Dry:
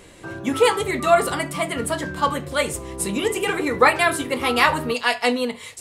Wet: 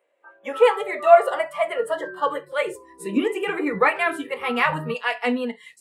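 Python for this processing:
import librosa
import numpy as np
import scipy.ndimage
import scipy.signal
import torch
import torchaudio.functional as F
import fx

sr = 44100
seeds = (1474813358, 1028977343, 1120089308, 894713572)

y = fx.noise_reduce_blind(x, sr, reduce_db=22)
y = fx.filter_sweep_highpass(y, sr, from_hz=570.0, to_hz=180.0, start_s=1.51, end_s=4.02, q=4.4)
y = fx.high_shelf_res(y, sr, hz=3400.0, db=-10.0, q=1.5)
y = y * librosa.db_to_amplitude(-5.0)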